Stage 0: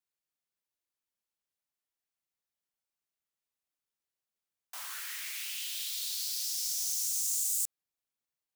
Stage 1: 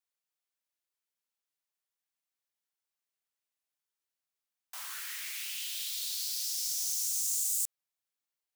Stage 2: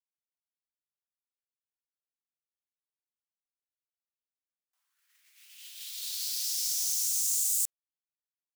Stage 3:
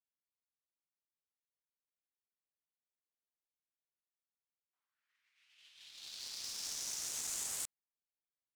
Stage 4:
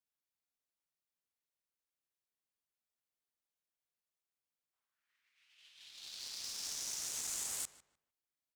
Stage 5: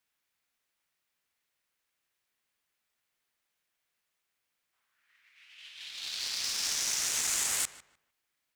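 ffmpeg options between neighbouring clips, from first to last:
ffmpeg -i in.wav -af "lowshelf=frequency=340:gain=-11" out.wav
ffmpeg -i in.wav -af "agate=range=-43dB:threshold=-35dB:ratio=16:detection=peak,volume=3dB" out.wav
ffmpeg -i in.wav -af "adynamicsmooth=sensitivity=7:basefreq=2800,volume=-5.5dB" out.wav
ffmpeg -i in.wav -filter_complex "[0:a]asplit=2[link_01][link_02];[link_02]adelay=151,lowpass=frequency=2600:poles=1,volume=-14.5dB,asplit=2[link_03][link_04];[link_04]adelay=151,lowpass=frequency=2600:poles=1,volume=0.26,asplit=2[link_05][link_06];[link_06]adelay=151,lowpass=frequency=2600:poles=1,volume=0.26[link_07];[link_01][link_03][link_05][link_07]amix=inputs=4:normalize=0" out.wav
ffmpeg -i in.wav -af "equalizer=frequency=2000:width=0.79:gain=7.5,volume=8.5dB" out.wav

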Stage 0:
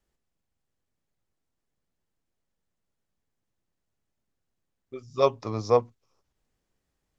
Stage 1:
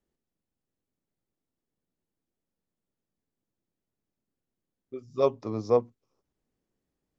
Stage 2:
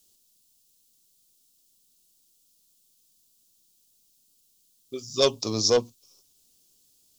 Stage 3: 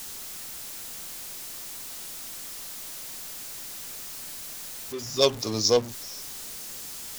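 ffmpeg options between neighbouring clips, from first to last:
ffmpeg -i in.wav -af "equalizer=frequency=280:width=0.57:gain=10.5,volume=-8.5dB" out.wav
ffmpeg -i in.wav -af "asoftclip=type=tanh:threshold=-16dB,aexciter=amount=12.2:drive=7.1:freq=3000,volume=3.5dB" out.wav
ffmpeg -i in.wav -af "aeval=exprs='val(0)+0.5*0.0398*sgn(val(0))':channel_layout=same,aeval=exprs='0.531*(cos(1*acos(clip(val(0)/0.531,-1,1)))-cos(1*PI/2))+0.0335*(cos(7*acos(clip(val(0)/0.531,-1,1)))-cos(7*PI/2))':channel_layout=same" out.wav

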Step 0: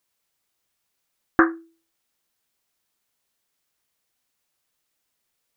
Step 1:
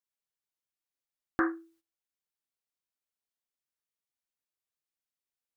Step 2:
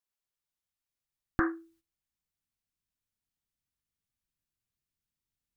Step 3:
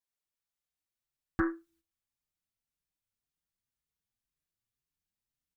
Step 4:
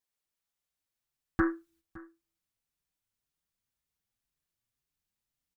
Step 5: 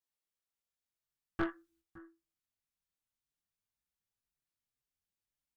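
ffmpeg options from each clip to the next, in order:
ffmpeg -i in.wav -af "alimiter=limit=-12dB:level=0:latency=1:release=23,agate=range=-14dB:threshold=-59dB:ratio=16:detection=peak,volume=-5dB" out.wav
ffmpeg -i in.wav -af "asubboost=boost=10:cutoff=180" out.wav
ffmpeg -i in.wav -filter_complex "[0:a]asplit=2[link_01][link_02];[link_02]adelay=5.4,afreqshift=1.9[link_03];[link_01][link_03]amix=inputs=2:normalize=1" out.wav
ffmpeg -i in.wav -af "aecho=1:1:563:0.0891,volume=2.5dB" out.wav
ffmpeg -i in.wav -af "flanger=delay=17.5:depth=5.3:speed=0.51,aeval=exprs='(tanh(20*val(0)+0.75)-tanh(0.75))/20':channel_layout=same,volume=1dB" out.wav

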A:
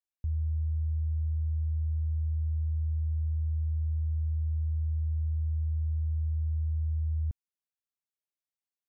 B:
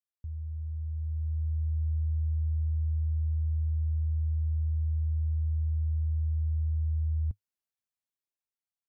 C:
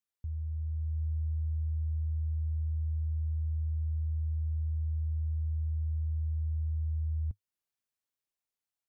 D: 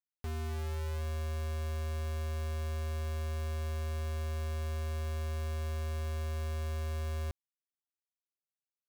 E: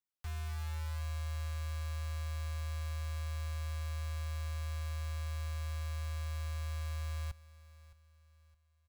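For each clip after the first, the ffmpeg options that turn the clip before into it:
ffmpeg -i in.wav -af "equalizer=frequency=100:width=2.9:gain=4.5,dynaudnorm=framelen=470:gausssize=5:maxgain=8dB,volume=-8.5dB" out.wav
ffmpeg -i in.wav -af "alimiter=level_in=5.5dB:limit=-24dB:level=0:latency=1:release=407,volume=-5.5dB,volume=1dB" out.wav
ffmpeg -i in.wav -af "acrusher=bits=5:mix=0:aa=0.000001,volume=-3.5dB" out.wav
ffmpeg -i in.wav -filter_complex "[0:a]acrossover=split=150|640|4200[link_01][link_02][link_03][link_04];[link_02]aeval=exprs='(mod(531*val(0)+1,2)-1)/531':channel_layout=same[link_05];[link_01][link_05][link_03][link_04]amix=inputs=4:normalize=0,aecho=1:1:615|1230|1845:0.119|0.0452|0.0172,volume=-1.5dB" out.wav

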